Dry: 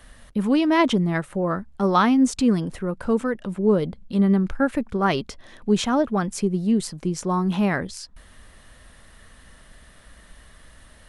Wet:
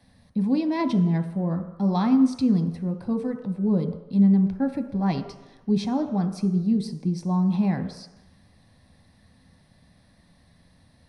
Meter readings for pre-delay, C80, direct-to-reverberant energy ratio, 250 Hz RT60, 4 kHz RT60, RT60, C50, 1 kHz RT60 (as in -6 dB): 3 ms, 11.5 dB, 6.0 dB, 0.80 s, 1.0 s, 1.0 s, 10.0 dB, 1.1 s